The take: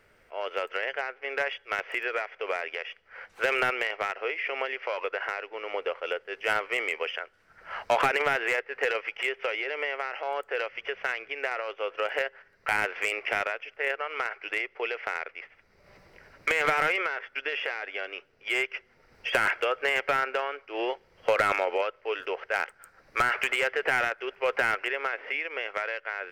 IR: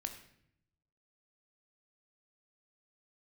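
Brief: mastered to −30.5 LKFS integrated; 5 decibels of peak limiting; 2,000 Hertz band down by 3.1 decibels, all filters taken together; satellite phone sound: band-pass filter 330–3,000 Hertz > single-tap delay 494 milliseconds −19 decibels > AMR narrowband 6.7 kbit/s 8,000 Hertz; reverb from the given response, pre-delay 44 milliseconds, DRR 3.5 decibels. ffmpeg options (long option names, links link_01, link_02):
-filter_complex "[0:a]equalizer=frequency=2000:width_type=o:gain=-3,alimiter=limit=-19.5dB:level=0:latency=1,asplit=2[link_01][link_02];[1:a]atrim=start_sample=2205,adelay=44[link_03];[link_02][link_03]afir=irnorm=-1:irlink=0,volume=-2dB[link_04];[link_01][link_04]amix=inputs=2:normalize=0,highpass=330,lowpass=3000,aecho=1:1:494:0.112,volume=3.5dB" -ar 8000 -c:a libopencore_amrnb -b:a 6700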